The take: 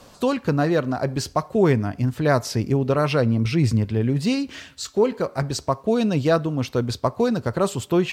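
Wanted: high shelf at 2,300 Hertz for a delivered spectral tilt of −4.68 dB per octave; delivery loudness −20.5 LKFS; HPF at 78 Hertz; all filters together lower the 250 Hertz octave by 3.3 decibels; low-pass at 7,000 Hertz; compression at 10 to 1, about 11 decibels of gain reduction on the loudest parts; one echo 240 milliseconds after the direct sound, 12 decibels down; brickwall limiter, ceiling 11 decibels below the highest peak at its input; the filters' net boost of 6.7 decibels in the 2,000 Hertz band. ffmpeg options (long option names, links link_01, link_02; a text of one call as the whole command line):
ffmpeg -i in.wav -af "highpass=78,lowpass=7000,equalizer=frequency=250:width_type=o:gain=-4.5,equalizer=frequency=2000:width_type=o:gain=5,highshelf=frequency=2300:gain=8,acompressor=threshold=-25dB:ratio=10,alimiter=limit=-22.5dB:level=0:latency=1,aecho=1:1:240:0.251,volume=12dB" out.wav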